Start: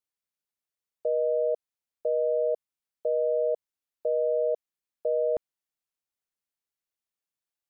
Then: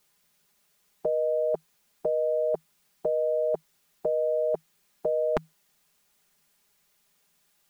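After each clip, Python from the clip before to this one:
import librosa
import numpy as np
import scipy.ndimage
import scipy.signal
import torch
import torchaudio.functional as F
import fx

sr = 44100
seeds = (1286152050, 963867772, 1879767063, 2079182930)

y = fx.peak_eq(x, sr, hz=160.0, db=9.0, octaves=0.21)
y = y + 0.65 * np.pad(y, (int(4.9 * sr / 1000.0), 0))[:len(y)]
y = fx.spectral_comp(y, sr, ratio=2.0)
y = y * 10.0 ** (7.0 / 20.0)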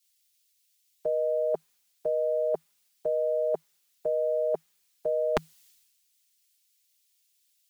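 y = fx.low_shelf(x, sr, hz=200.0, db=-8.5)
y = fx.band_widen(y, sr, depth_pct=100)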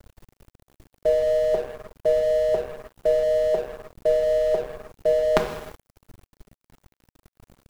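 y = fx.rev_gated(x, sr, seeds[0], gate_ms=400, shape='falling', drr_db=2.0)
y = fx.dmg_noise_colour(y, sr, seeds[1], colour='brown', level_db=-47.0)
y = np.sign(y) * np.maximum(np.abs(y) - 10.0 ** (-43.5 / 20.0), 0.0)
y = y * 10.0 ** (7.0 / 20.0)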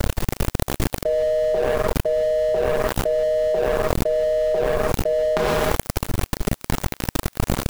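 y = fx.env_flatten(x, sr, amount_pct=100)
y = y * 10.0 ** (-4.0 / 20.0)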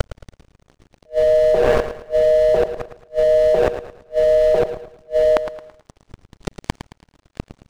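y = fx.gate_flip(x, sr, shuts_db=-9.0, range_db=-39)
y = fx.echo_feedback(y, sr, ms=110, feedback_pct=36, wet_db=-11.0)
y = np.interp(np.arange(len(y)), np.arange(len(y))[::3], y[::3])
y = y * 10.0 ** (5.5 / 20.0)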